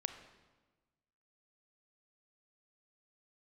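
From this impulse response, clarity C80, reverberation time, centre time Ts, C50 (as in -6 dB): 11.0 dB, 1.3 s, 16 ms, 9.0 dB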